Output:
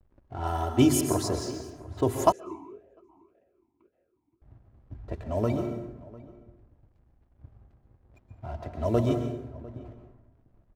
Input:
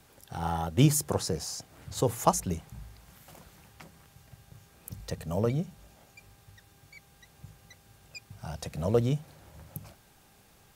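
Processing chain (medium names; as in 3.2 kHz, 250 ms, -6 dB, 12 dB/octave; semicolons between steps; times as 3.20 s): level-controlled noise filter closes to 610 Hz, open at -26.5 dBFS; tilt shelf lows +3 dB; hum notches 50/100/150/200/250/300/350/400 Hz; comb 3 ms, depth 82%; hysteresis with a dead band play -50.5 dBFS; echo from a far wall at 120 m, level -20 dB; plate-style reverb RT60 0.98 s, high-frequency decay 0.5×, pre-delay 110 ms, DRR 5 dB; 2.32–4.42 s: talking filter e-u 1.8 Hz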